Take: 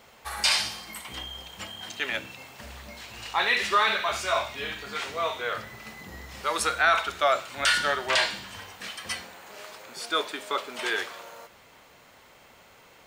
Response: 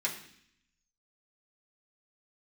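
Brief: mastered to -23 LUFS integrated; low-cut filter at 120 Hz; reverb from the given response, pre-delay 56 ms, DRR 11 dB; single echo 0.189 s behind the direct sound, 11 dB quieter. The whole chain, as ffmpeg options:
-filter_complex "[0:a]highpass=120,aecho=1:1:189:0.282,asplit=2[a][b];[1:a]atrim=start_sample=2205,adelay=56[c];[b][c]afir=irnorm=-1:irlink=0,volume=-16dB[d];[a][d]amix=inputs=2:normalize=0,volume=3.5dB"

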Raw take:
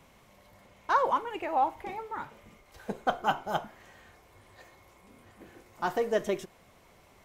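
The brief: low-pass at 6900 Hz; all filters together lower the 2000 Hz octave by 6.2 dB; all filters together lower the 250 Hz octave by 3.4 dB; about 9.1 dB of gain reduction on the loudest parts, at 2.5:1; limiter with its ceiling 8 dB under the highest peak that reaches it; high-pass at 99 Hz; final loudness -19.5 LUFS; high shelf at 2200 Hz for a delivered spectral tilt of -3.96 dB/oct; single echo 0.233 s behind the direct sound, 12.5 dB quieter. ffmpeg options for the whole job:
-af "highpass=99,lowpass=6.9k,equalizer=f=250:t=o:g=-4.5,equalizer=f=2k:t=o:g=-6.5,highshelf=f=2.2k:g=-5.5,acompressor=threshold=-37dB:ratio=2.5,alimiter=level_in=8dB:limit=-24dB:level=0:latency=1,volume=-8dB,aecho=1:1:233:0.237,volume=24.5dB"

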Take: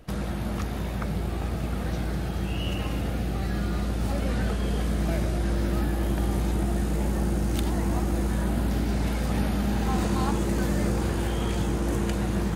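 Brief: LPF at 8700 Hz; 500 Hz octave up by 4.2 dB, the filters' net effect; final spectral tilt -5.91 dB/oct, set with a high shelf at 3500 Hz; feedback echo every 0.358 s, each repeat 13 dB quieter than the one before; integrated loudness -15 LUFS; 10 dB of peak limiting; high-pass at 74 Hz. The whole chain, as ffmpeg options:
-af "highpass=74,lowpass=8.7k,equalizer=f=500:t=o:g=5.5,highshelf=f=3.5k:g=3.5,alimiter=limit=-23dB:level=0:latency=1,aecho=1:1:358|716|1074:0.224|0.0493|0.0108,volume=17dB"

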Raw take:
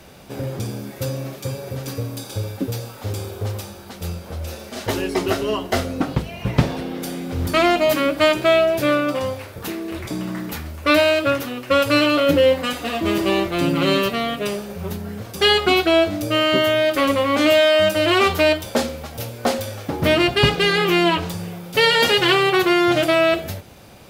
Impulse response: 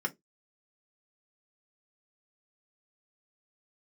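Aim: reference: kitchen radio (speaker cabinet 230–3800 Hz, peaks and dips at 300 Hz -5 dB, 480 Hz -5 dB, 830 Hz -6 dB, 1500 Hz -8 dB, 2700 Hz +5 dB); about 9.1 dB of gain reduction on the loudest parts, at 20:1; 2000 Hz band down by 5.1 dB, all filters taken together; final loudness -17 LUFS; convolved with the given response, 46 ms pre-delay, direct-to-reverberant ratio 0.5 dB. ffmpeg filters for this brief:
-filter_complex "[0:a]equalizer=f=2k:t=o:g=-7.5,acompressor=threshold=-19dB:ratio=20,asplit=2[a][b];[1:a]atrim=start_sample=2205,adelay=46[c];[b][c]afir=irnorm=-1:irlink=0,volume=-5.5dB[d];[a][d]amix=inputs=2:normalize=0,highpass=230,equalizer=f=300:t=q:w=4:g=-5,equalizer=f=480:t=q:w=4:g=-5,equalizer=f=830:t=q:w=4:g=-6,equalizer=f=1.5k:t=q:w=4:g=-8,equalizer=f=2.7k:t=q:w=4:g=5,lowpass=f=3.8k:w=0.5412,lowpass=f=3.8k:w=1.3066,volume=9dB"

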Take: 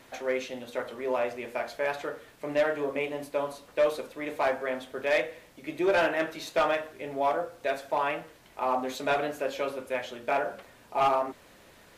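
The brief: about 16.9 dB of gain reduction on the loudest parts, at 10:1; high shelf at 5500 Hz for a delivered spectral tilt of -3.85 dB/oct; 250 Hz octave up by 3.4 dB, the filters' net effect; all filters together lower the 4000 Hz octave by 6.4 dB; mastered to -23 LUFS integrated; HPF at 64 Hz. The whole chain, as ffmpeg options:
-af "highpass=64,equalizer=f=250:t=o:g=4.5,equalizer=f=4k:t=o:g=-6,highshelf=f=5.5k:g=-7,acompressor=threshold=-38dB:ratio=10,volume=20dB"

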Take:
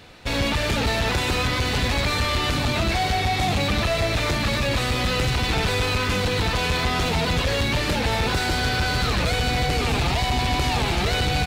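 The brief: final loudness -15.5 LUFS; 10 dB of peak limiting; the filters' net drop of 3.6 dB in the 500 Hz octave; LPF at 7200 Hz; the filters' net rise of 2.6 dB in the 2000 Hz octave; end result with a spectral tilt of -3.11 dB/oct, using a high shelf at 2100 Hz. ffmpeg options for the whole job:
-af "lowpass=7.2k,equalizer=f=500:t=o:g=-4.5,equalizer=f=2k:t=o:g=6.5,highshelf=f=2.1k:g=-5,volume=14dB,alimiter=limit=-9.5dB:level=0:latency=1"

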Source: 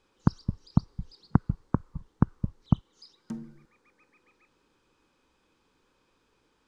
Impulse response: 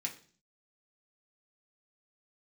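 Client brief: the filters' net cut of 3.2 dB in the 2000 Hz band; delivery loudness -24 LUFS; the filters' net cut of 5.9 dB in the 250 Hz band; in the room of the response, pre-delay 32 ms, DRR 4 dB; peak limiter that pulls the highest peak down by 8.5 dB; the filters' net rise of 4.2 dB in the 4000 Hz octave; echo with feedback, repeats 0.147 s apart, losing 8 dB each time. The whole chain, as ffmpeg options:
-filter_complex "[0:a]equalizer=f=250:t=o:g=-9,equalizer=f=2k:t=o:g=-6,equalizer=f=4k:t=o:g=6.5,alimiter=limit=-18dB:level=0:latency=1,aecho=1:1:147|294|441|588|735:0.398|0.159|0.0637|0.0255|0.0102,asplit=2[a][b];[1:a]atrim=start_sample=2205,adelay=32[c];[b][c]afir=irnorm=-1:irlink=0,volume=-4.5dB[d];[a][d]amix=inputs=2:normalize=0,volume=14dB"

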